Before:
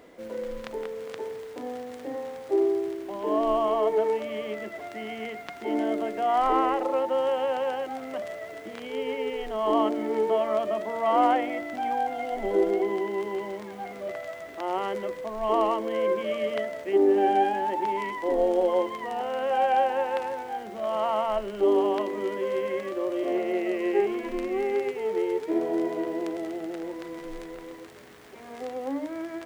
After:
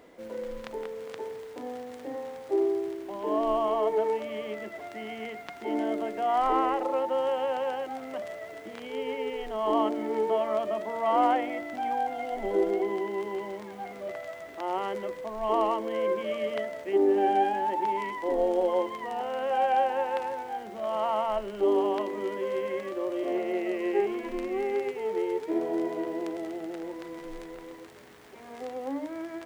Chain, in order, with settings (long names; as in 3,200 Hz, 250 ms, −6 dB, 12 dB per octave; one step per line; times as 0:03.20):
parametric band 890 Hz +2.5 dB 0.26 octaves
level −2.5 dB